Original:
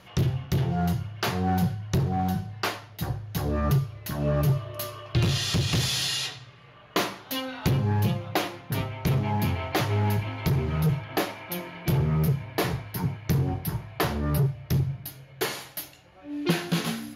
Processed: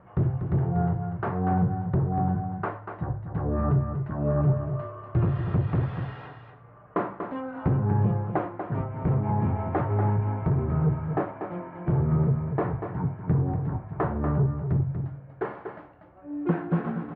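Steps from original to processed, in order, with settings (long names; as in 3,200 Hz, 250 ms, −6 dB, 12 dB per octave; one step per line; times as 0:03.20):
low-pass filter 1,400 Hz 24 dB per octave
on a send: single-tap delay 240 ms −7.5 dB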